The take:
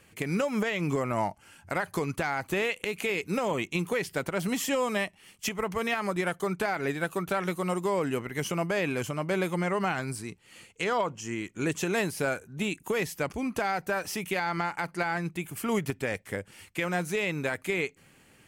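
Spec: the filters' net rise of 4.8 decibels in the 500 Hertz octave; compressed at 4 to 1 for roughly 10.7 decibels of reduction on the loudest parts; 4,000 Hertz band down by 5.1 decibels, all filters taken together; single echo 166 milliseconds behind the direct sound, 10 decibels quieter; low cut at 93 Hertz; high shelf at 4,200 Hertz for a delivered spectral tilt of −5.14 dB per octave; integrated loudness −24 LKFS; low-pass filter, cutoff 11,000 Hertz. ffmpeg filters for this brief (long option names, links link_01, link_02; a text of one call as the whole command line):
ffmpeg -i in.wav -af "highpass=93,lowpass=11000,equalizer=frequency=500:width_type=o:gain=6,equalizer=frequency=4000:width_type=o:gain=-4.5,highshelf=frequency=4200:gain=-5,acompressor=threshold=-34dB:ratio=4,aecho=1:1:166:0.316,volume=13dB" out.wav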